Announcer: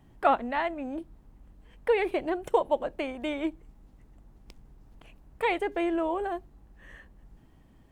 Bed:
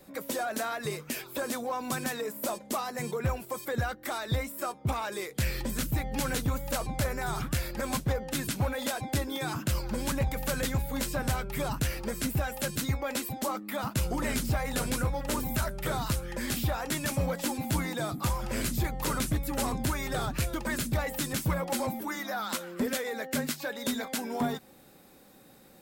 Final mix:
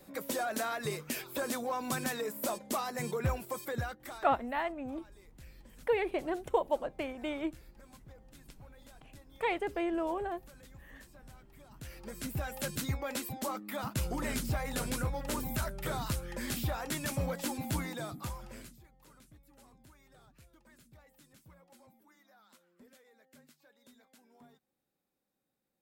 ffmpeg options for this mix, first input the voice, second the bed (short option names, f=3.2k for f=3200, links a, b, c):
-filter_complex "[0:a]adelay=4000,volume=-5dB[a];[1:a]volume=19.5dB,afade=t=out:st=3.46:d=0.94:silence=0.0630957,afade=t=in:st=11.7:d=0.91:silence=0.0841395,afade=t=out:st=17.7:d=1.09:silence=0.0530884[b];[a][b]amix=inputs=2:normalize=0"